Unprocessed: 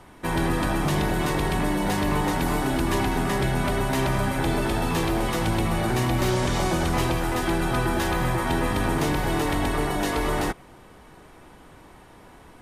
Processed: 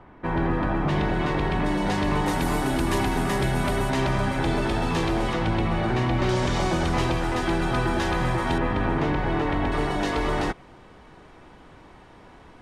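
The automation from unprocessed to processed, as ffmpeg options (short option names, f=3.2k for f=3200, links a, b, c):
-af "asetnsamples=n=441:p=0,asendcmd='0.89 lowpass f 3300;1.66 lowpass f 5900;2.26 lowpass f 12000;3.9 lowpass f 6400;5.33 lowpass f 3600;6.29 lowpass f 6400;8.58 lowpass f 2600;9.72 lowpass f 5500',lowpass=1.9k"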